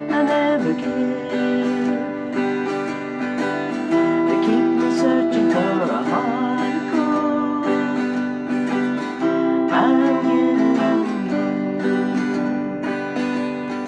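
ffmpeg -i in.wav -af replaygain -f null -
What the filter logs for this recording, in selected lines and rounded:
track_gain = +1.1 dB
track_peak = 0.381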